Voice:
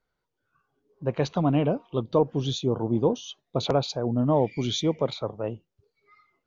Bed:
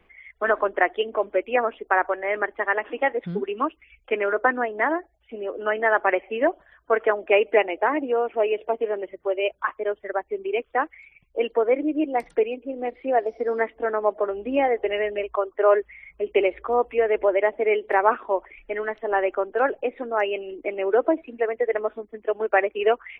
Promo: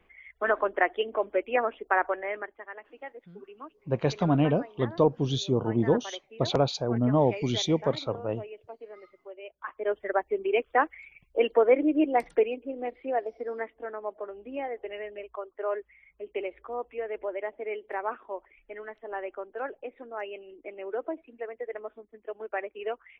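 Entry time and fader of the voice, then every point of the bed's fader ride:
2.85 s, −0.5 dB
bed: 0:02.19 −4 dB
0:02.65 −19.5 dB
0:09.49 −19.5 dB
0:09.94 0 dB
0:12.12 0 dB
0:13.98 −13 dB

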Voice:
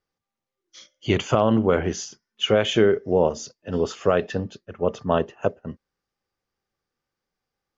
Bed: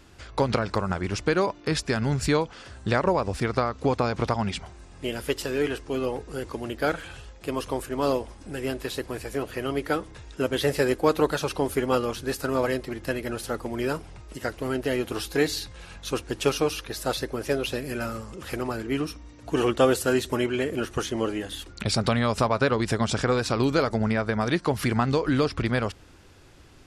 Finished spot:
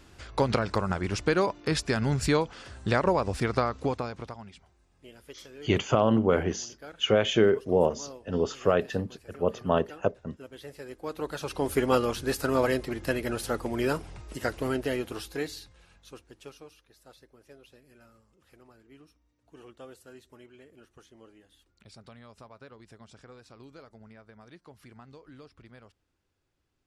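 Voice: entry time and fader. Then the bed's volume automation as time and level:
4.60 s, −3.5 dB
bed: 0:03.74 −1.5 dB
0:04.49 −20 dB
0:10.84 −20 dB
0:11.77 0 dB
0:14.62 0 dB
0:16.81 −27 dB

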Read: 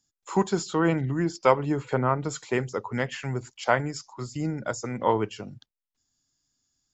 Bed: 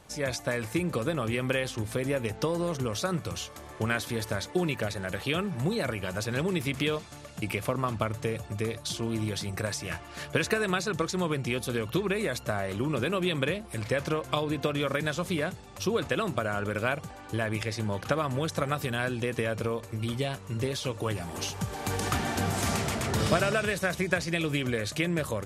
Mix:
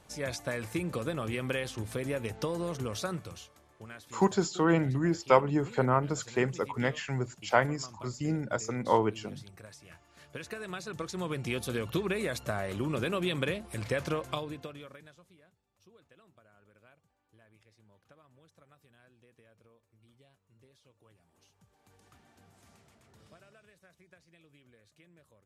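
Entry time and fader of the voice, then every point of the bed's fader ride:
3.85 s, −2.0 dB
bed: 0:03.07 −4.5 dB
0:03.68 −18.5 dB
0:10.08 −18.5 dB
0:11.54 −3 dB
0:14.23 −3 dB
0:15.38 −33 dB

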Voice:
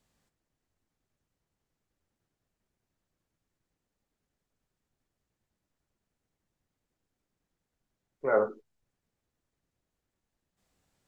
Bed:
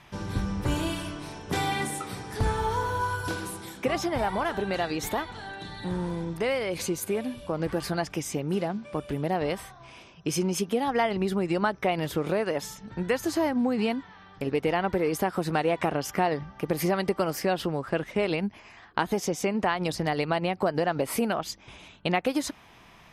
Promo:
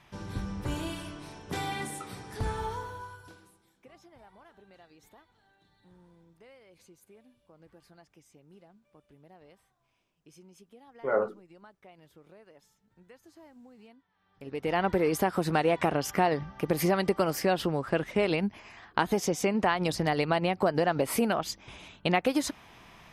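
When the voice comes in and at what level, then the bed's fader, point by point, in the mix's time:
2.80 s, −1.5 dB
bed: 0:02.64 −6 dB
0:03.63 −28 dB
0:14.08 −28 dB
0:14.79 0 dB

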